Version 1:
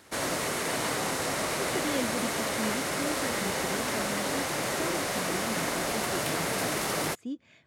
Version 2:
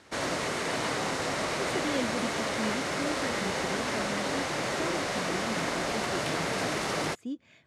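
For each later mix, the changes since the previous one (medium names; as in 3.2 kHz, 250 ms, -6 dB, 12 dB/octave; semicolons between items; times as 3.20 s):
background: add low-pass 6.4 kHz 12 dB/octave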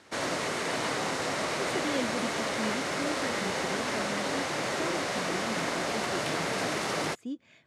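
master: add high-pass 110 Hz 6 dB/octave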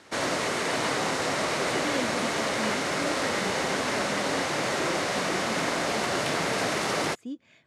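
background +3.5 dB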